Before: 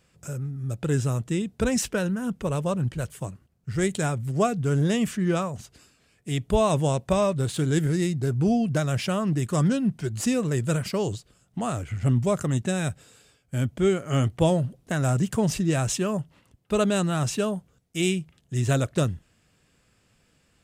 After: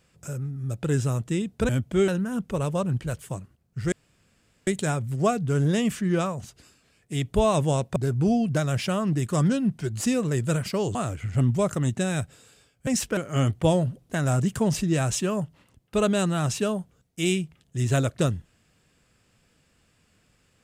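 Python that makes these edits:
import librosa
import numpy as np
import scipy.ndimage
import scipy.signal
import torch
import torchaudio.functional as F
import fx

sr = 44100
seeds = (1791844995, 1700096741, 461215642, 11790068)

y = fx.edit(x, sr, fx.swap(start_s=1.69, length_s=0.3, other_s=13.55, other_length_s=0.39),
    fx.insert_room_tone(at_s=3.83, length_s=0.75),
    fx.cut(start_s=7.12, length_s=1.04),
    fx.cut(start_s=11.15, length_s=0.48), tone=tone)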